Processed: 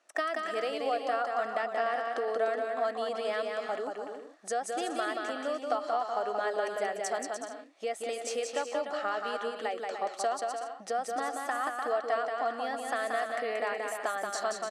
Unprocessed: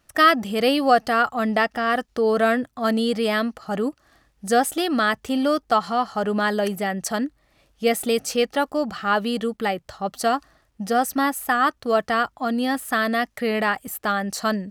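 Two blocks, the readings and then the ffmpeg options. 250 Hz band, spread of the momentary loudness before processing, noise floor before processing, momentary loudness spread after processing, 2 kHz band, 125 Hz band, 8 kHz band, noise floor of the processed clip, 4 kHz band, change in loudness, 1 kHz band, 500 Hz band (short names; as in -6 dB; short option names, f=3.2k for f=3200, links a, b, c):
-20.5 dB, 8 LU, -65 dBFS, 5 LU, -11.5 dB, under -25 dB, -8.5 dB, -47 dBFS, -13.0 dB, -10.5 dB, -9.5 dB, -8.0 dB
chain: -filter_complex "[0:a]acompressor=threshold=-27dB:ratio=10,highpass=f=350:w=0.5412,highpass=f=350:w=1.3066,equalizer=f=670:t=q:w=4:g=6,equalizer=f=3.2k:t=q:w=4:g=-3,equalizer=f=4.8k:t=q:w=4:g=-4,lowpass=f=8.7k:w=0.5412,lowpass=f=8.7k:w=1.3066,asplit=2[a][b];[b]aecho=0:1:180|297|373|422.5|454.6:0.631|0.398|0.251|0.158|0.1[c];[a][c]amix=inputs=2:normalize=0,volume=-3.5dB"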